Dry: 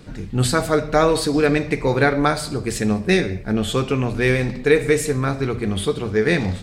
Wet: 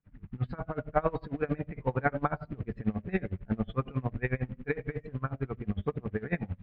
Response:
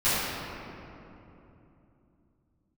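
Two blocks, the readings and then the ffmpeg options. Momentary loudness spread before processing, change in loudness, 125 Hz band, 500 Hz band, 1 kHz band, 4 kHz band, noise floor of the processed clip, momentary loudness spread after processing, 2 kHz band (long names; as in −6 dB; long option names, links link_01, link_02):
6 LU, −14.0 dB, −10.5 dB, −16.0 dB, −11.5 dB, −30.5 dB, −60 dBFS, 7 LU, −15.5 dB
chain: -filter_complex "[0:a]acrossover=split=1200[link_01][link_02];[link_01]dynaudnorm=framelen=260:gausssize=5:maxgain=8dB[link_03];[link_03][link_02]amix=inputs=2:normalize=0,afftdn=noise_reduction=13:noise_floor=-28,acrusher=bits=5:mode=log:mix=0:aa=0.000001,lowpass=frequency=2300:width=0.5412,lowpass=frequency=2300:width=1.3066,equalizer=frequency=370:width_type=o:width=1.1:gain=-8.5,aeval=exprs='val(0)*pow(10,-26*(0.5-0.5*cos(2*PI*11*n/s))/20)':channel_layout=same,volume=-8dB"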